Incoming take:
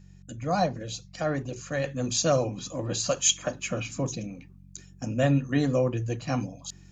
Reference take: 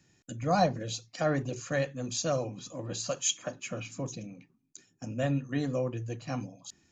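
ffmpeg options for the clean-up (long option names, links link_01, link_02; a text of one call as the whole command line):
ffmpeg -i in.wav -af "bandreject=frequency=46.7:width_type=h:width=4,bandreject=frequency=93.4:width_type=h:width=4,bandreject=frequency=140.1:width_type=h:width=4,bandreject=frequency=186.8:width_type=h:width=4,asetnsamples=nb_out_samples=441:pad=0,asendcmd='1.84 volume volume -6.5dB',volume=0dB" out.wav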